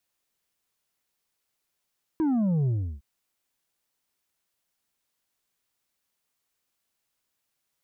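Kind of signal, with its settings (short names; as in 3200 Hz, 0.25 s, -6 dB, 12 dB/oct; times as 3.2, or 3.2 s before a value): sub drop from 330 Hz, over 0.81 s, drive 5 dB, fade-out 0.34 s, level -22 dB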